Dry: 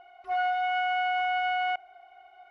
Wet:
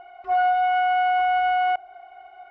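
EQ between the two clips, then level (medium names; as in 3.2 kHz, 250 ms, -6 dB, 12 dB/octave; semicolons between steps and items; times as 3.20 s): dynamic bell 2.1 kHz, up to -5 dB, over -44 dBFS, Q 1.1; distance through air 58 m; treble shelf 3.4 kHz -11 dB; +9.0 dB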